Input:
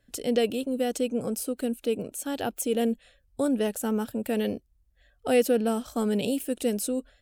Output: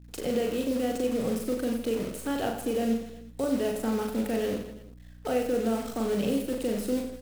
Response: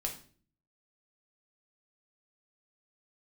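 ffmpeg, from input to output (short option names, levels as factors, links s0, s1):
-filter_complex "[0:a]acrossover=split=190|2600[s0][s1][s2];[s2]acompressor=threshold=0.00447:ratio=4[s3];[s0][s1][s3]amix=inputs=3:normalize=0,alimiter=limit=0.075:level=0:latency=1:release=212,acrusher=bits=8:dc=4:mix=0:aa=0.000001,aecho=1:1:40|92|159.6|247.5|361.7:0.631|0.398|0.251|0.158|0.1,aeval=exprs='val(0)+0.00316*(sin(2*PI*60*n/s)+sin(2*PI*2*60*n/s)/2+sin(2*PI*3*60*n/s)/3+sin(2*PI*4*60*n/s)/4+sin(2*PI*5*60*n/s)/5)':c=same,asplit=2[s4][s5];[1:a]atrim=start_sample=2205[s6];[s5][s6]afir=irnorm=-1:irlink=0,volume=0.224[s7];[s4][s7]amix=inputs=2:normalize=0"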